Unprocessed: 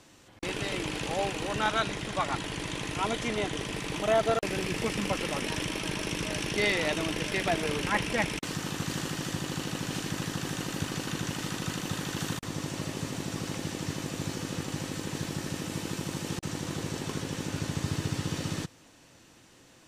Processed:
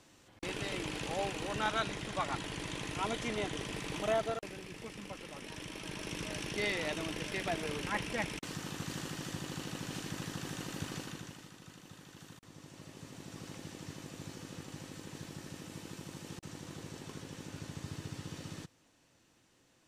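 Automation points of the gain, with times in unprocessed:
4.08 s -5.5 dB
4.6 s -15.5 dB
5.3 s -15.5 dB
6.18 s -7.5 dB
10.97 s -7.5 dB
11.52 s -20 dB
12.41 s -20 dB
13.45 s -12 dB

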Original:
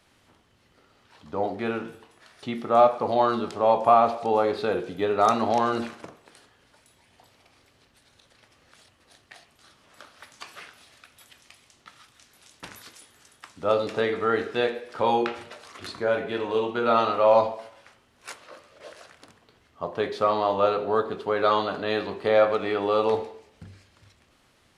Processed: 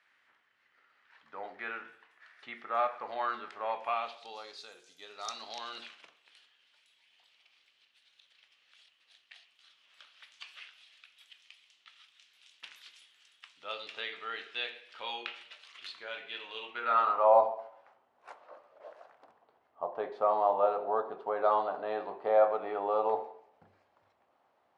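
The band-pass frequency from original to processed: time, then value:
band-pass, Q 2.4
3.69 s 1800 Hz
4.74 s 7300 Hz
5.96 s 3000 Hz
16.58 s 3000 Hz
17.33 s 770 Hz

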